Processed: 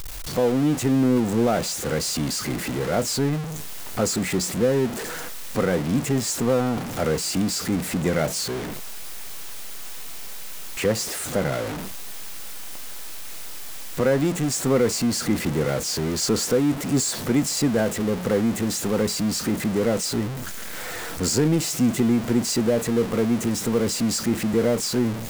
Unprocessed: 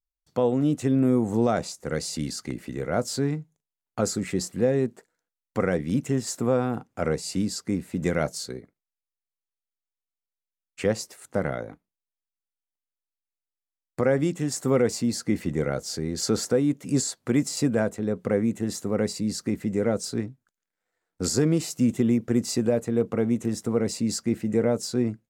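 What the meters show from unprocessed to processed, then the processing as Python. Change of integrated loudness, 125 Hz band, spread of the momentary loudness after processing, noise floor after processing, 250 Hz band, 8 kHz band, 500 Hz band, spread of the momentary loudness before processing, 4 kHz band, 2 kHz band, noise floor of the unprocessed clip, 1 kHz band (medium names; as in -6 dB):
+3.0 dB, +2.5 dB, 15 LU, -32 dBFS, +2.5 dB, +6.5 dB, +2.5 dB, 8 LU, +7.5 dB, +5.5 dB, under -85 dBFS, +4.0 dB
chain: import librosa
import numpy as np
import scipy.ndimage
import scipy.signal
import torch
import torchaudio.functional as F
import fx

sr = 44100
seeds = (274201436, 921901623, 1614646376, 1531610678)

y = x + 0.5 * 10.0 ** (-25.0 / 20.0) * np.sign(x)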